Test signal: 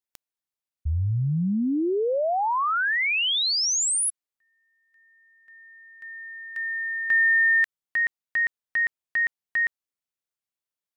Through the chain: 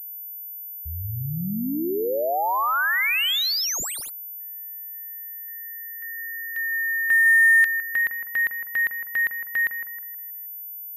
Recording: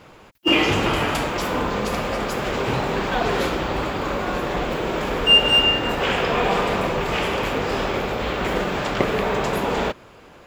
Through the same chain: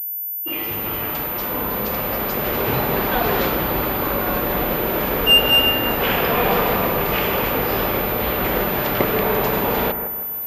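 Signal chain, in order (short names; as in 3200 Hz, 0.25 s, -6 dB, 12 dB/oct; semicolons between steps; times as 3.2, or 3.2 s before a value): opening faded in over 2.76 s; added harmonics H 5 -30 dB, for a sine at -2 dBFS; on a send: analogue delay 0.158 s, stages 2048, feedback 41%, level -9 dB; on the sum: pulse-width modulation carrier 14000 Hz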